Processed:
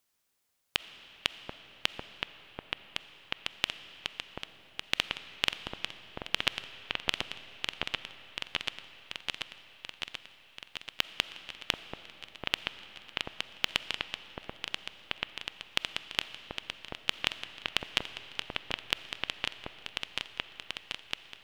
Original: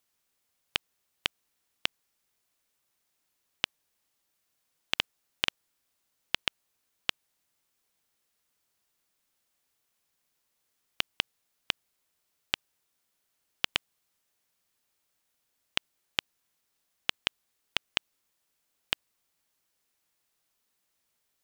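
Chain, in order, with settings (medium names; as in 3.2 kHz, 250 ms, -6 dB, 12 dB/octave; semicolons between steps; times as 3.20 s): delay with an opening low-pass 735 ms, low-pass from 750 Hz, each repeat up 2 oct, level 0 dB; reverberation RT60 4.1 s, pre-delay 5 ms, DRR 12.5 dB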